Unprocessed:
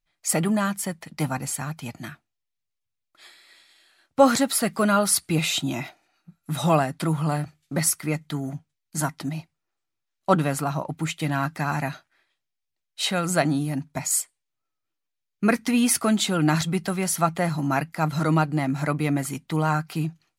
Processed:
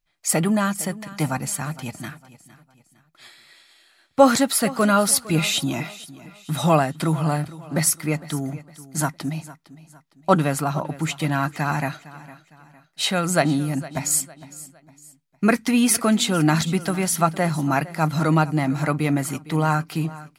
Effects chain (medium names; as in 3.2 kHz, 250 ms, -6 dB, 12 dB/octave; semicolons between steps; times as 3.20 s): feedback delay 458 ms, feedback 38%, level -18 dB; trim +2.5 dB